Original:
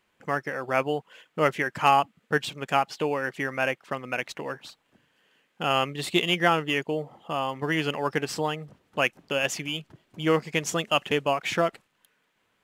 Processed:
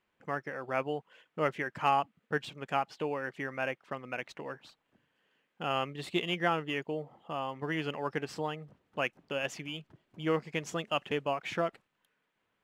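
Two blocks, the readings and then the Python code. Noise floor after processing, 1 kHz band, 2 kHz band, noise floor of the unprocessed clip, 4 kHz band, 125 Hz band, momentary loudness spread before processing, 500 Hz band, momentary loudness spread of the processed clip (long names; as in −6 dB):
−80 dBFS, −7.5 dB, −8.5 dB, −72 dBFS, −10.0 dB, −7.0 dB, 10 LU, −7.0 dB, 11 LU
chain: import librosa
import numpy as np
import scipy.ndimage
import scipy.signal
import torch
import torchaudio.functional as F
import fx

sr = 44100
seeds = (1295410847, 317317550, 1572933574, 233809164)

y = fx.high_shelf(x, sr, hz=4800.0, db=-10.0)
y = F.gain(torch.from_numpy(y), -7.0).numpy()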